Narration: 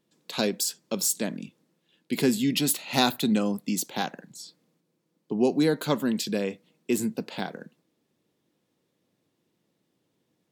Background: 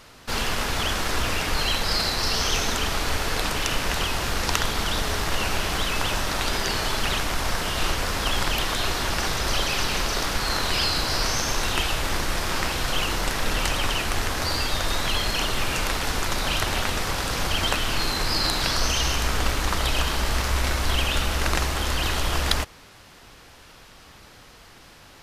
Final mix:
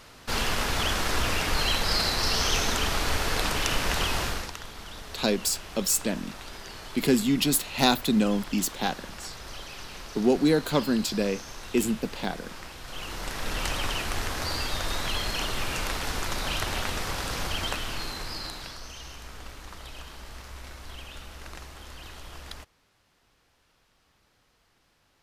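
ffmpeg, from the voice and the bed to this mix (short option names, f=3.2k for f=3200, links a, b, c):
-filter_complex "[0:a]adelay=4850,volume=1dB[a];[1:a]volume=10dB,afade=t=out:st=4.2:d=0.32:silence=0.177828,afade=t=in:st=12.83:d=0.87:silence=0.266073,afade=t=out:st=17.32:d=1.49:silence=0.199526[b];[a][b]amix=inputs=2:normalize=0"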